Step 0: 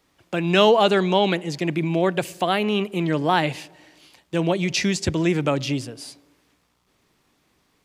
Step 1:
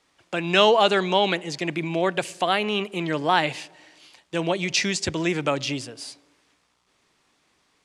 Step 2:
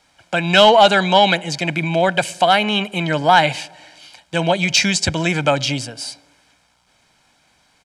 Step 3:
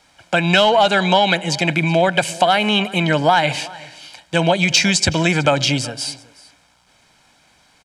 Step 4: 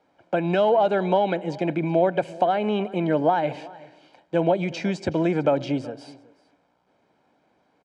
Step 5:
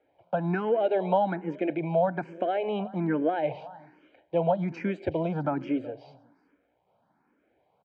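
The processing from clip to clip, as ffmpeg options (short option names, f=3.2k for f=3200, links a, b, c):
-af "lowpass=f=10k:w=0.5412,lowpass=f=10k:w=1.3066,lowshelf=f=390:g=-9.5,volume=1.5dB"
-af "aecho=1:1:1.3:0.6,asoftclip=type=tanh:threshold=-7.5dB,volume=7dB"
-af "acompressor=threshold=-14dB:ratio=6,aecho=1:1:373:0.0891,volume=3.5dB"
-af "bandpass=f=390:t=q:w=1.3:csg=0"
-filter_complex "[0:a]lowpass=2.5k,asplit=2[a][b];[b]afreqshift=1.2[c];[a][c]amix=inputs=2:normalize=1,volume=-1.5dB"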